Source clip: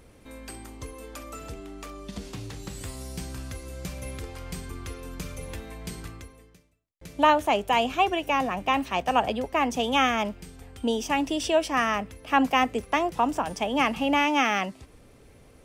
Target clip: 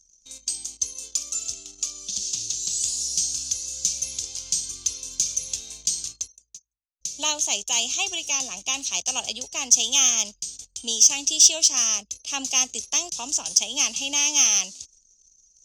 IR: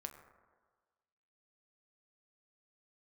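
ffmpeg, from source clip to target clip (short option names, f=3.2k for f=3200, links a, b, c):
-af "lowpass=f=6.4k:t=q:w=6.1,aexciter=amount=14:drive=6.7:freq=2.9k,anlmdn=39.8,volume=-14dB"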